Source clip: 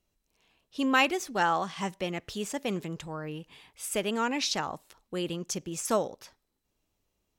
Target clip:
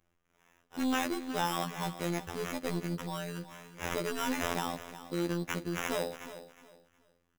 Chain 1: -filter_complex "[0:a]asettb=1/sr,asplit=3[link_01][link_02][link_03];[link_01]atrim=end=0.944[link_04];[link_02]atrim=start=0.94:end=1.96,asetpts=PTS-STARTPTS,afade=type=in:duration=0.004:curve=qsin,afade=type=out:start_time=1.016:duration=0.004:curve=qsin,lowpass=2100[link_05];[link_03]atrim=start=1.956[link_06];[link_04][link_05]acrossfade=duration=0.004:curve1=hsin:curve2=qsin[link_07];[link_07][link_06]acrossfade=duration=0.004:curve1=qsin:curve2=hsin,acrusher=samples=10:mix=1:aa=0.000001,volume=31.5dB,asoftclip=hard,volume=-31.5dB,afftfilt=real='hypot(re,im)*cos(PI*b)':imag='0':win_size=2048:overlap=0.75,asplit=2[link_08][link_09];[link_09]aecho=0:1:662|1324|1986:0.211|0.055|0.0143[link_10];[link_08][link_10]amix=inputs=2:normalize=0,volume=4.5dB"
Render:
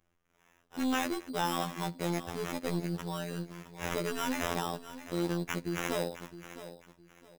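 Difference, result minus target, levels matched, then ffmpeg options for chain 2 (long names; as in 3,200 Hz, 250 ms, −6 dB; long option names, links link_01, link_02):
echo 298 ms late
-filter_complex "[0:a]asettb=1/sr,asplit=3[link_01][link_02][link_03];[link_01]atrim=end=0.944[link_04];[link_02]atrim=start=0.94:end=1.96,asetpts=PTS-STARTPTS,afade=type=in:duration=0.004:curve=qsin,afade=type=out:start_time=1.016:duration=0.004:curve=qsin,lowpass=2100[link_05];[link_03]atrim=start=1.956[link_06];[link_04][link_05]acrossfade=duration=0.004:curve1=hsin:curve2=qsin[link_07];[link_07][link_06]acrossfade=duration=0.004:curve1=qsin:curve2=hsin,acrusher=samples=10:mix=1:aa=0.000001,volume=31.5dB,asoftclip=hard,volume=-31.5dB,afftfilt=real='hypot(re,im)*cos(PI*b)':imag='0':win_size=2048:overlap=0.75,asplit=2[link_08][link_09];[link_09]aecho=0:1:364|728|1092:0.211|0.055|0.0143[link_10];[link_08][link_10]amix=inputs=2:normalize=0,volume=4.5dB"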